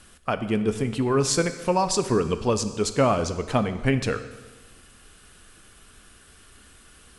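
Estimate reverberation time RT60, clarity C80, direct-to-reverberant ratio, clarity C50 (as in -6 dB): 1.3 s, 13.0 dB, 10.0 dB, 12.0 dB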